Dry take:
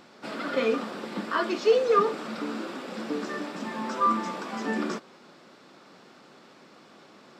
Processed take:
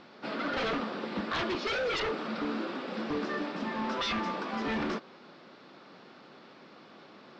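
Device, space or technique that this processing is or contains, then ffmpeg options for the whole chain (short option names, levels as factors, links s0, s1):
synthesiser wavefolder: -af "aeval=exprs='0.0501*(abs(mod(val(0)/0.0501+3,4)-2)-1)':c=same,lowpass=f=4900:w=0.5412,lowpass=f=4900:w=1.3066"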